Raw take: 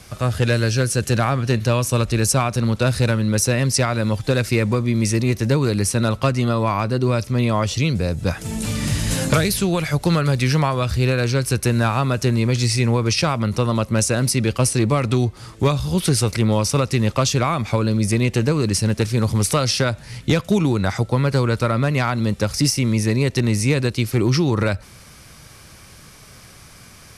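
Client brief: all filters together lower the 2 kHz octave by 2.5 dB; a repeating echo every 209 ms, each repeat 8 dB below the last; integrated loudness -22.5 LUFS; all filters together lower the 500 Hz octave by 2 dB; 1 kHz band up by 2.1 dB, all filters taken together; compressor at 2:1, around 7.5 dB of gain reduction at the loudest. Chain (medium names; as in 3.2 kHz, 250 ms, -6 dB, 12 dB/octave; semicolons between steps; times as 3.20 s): peaking EQ 500 Hz -3.5 dB; peaking EQ 1 kHz +5 dB; peaking EQ 2 kHz -5 dB; compression 2:1, threshold -28 dBFS; feedback delay 209 ms, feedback 40%, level -8 dB; trim +3.5 dB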